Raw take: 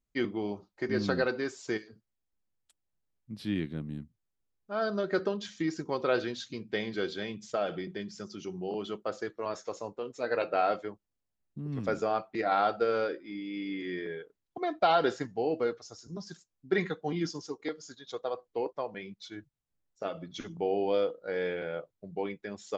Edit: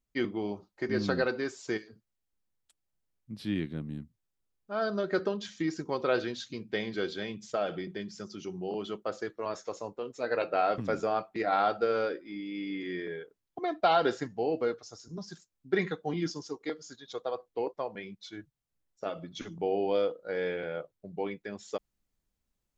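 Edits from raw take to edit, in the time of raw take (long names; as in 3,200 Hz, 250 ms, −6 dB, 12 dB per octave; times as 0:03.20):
0:10.78–0:11.77: remove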